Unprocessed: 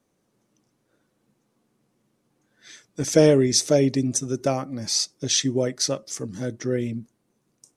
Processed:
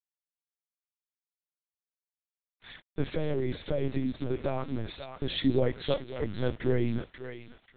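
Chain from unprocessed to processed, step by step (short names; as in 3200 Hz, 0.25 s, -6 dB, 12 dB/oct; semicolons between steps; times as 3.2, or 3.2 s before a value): limiter -16 dBFS, peak gain reduction 10.5 dB; 3.05–5.35 compressor 16:1, threshold -25 dBFS, peak gain reduction 6.5 dB; bit-crush 8-bit; thinning echo 0.54 s, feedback 34%, high-pass 1000 Hz, level -5.5 dB; LPC vocoder at 8 kHz pitch kept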